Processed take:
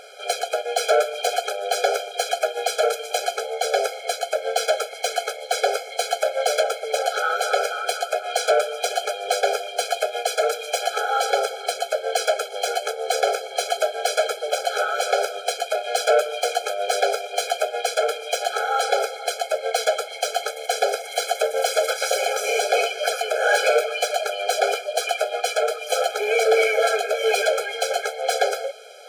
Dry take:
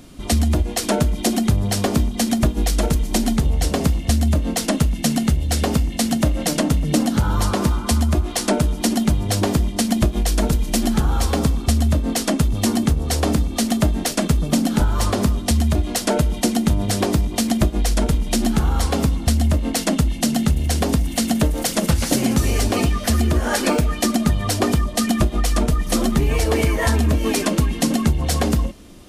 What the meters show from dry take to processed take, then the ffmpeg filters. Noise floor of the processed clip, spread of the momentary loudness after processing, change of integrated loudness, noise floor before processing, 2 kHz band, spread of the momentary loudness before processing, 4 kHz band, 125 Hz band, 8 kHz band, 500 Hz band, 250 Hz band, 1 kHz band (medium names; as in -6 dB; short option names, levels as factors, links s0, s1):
-36 dBFS, 5 LU, -3.0 dB, -29 dBFS, +4.5 dB, 2 LU, +0.5 dB, under -40 dB, -4.0 dB, +4.5 dB, under -30 dB, +4.0 dB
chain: -filter_complex "[0:a]asplit=2[s0][s1];[s1]highpass=f=720:p=1,volume=11.2,asoftclip=type=tanh:threshold=0.596[s2];[s0][s2]amix=inputs=2:normalize=0,lowpass=f=2200:p=1,volume=0.501,afftfilt=real='re*eq(mod(floor(b*sr/1024/430),2),1)':imag='im*eq(mod(floor(b*sr/1024/430),2),1)':win_size=1024:overlap=0.75,volume=0.891"